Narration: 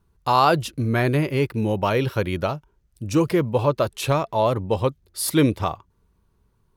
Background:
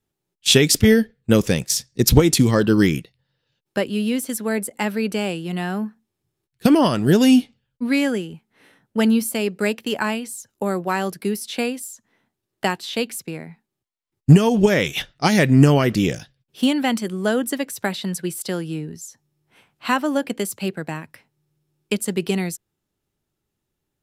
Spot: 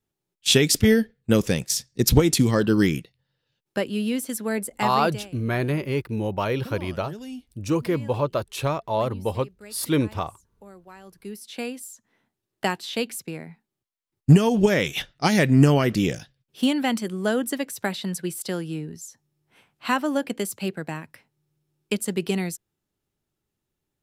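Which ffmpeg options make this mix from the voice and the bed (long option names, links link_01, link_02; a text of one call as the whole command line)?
ffmpeg -i stem1.wav -i stem2.wav -filter_complex "[0:a]adelay=4550,volume=-4dB[link_01];[1:a]volume=17dB,afade=type=out:start_time=4.81:duration=0.49:silence=0.1,afade=type=in:start_time=11.03:duration=1.16:silence=0.0944061[link_02];[link_01][link_02]amix=inputs=2:normalize=0" out.wav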